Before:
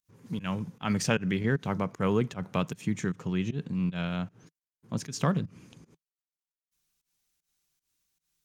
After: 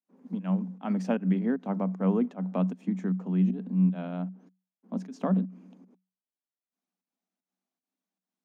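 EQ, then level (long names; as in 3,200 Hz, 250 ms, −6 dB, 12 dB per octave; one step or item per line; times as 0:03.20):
Chebyshev high-pass with heavy ripple 180 Hz, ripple 9 dB
spectral tilt −4 dB per octave
0.0 dB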